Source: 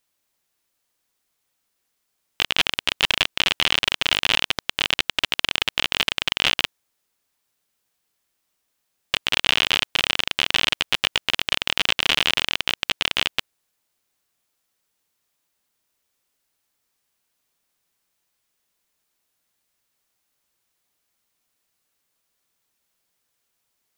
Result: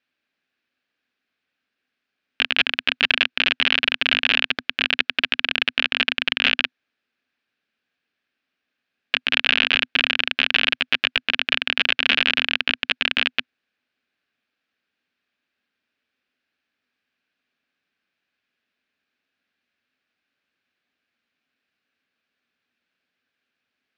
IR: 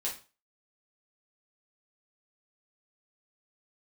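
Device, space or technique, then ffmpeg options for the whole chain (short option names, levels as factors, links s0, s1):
guitar cabinet: -af "highpass=91,equalizer=f=130:t=q:w=4:g=-5,equalizer=f=250:t=q:w=4:g=10,equalizer=f=950:t=q:w=4:g=-7,equalizer=f=1600:t=q:w=4:g=9,equalizer=f=2500:t=q:w=4:g=7,lowpass=f=4300:w=0.5412,lowpass=f=4300:w=1.3066,volume=0.794"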